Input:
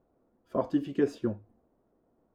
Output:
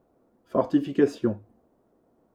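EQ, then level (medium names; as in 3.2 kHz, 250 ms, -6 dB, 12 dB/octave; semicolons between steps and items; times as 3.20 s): bass shelf 60 Hz -8.5 dB; +6.0 dB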